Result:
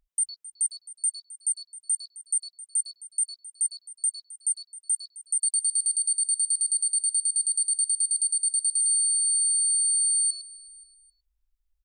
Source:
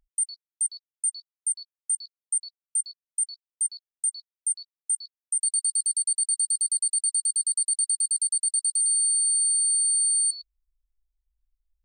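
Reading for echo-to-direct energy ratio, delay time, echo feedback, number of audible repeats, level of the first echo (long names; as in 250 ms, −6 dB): −17.0 dB, 264 ms, 36%, 2, −17.5 dB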